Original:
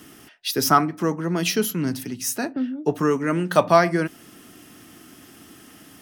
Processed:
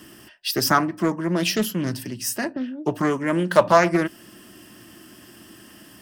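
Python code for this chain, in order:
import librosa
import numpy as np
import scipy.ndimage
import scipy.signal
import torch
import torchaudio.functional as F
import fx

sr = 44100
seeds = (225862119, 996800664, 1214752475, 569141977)

y = fx.ripple_eq(x, sr, per_octave=1.3, db=7)
y = fx.doppler_dist(y, sr, depth_ms=0.29)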